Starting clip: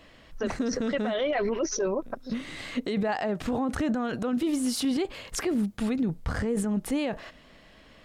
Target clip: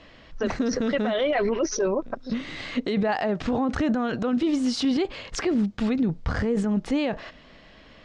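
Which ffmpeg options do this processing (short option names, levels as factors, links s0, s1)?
-af "lowpass=f=6100:w=0.5412,lowpass=f=6100:w=1.3066,volume=1.5"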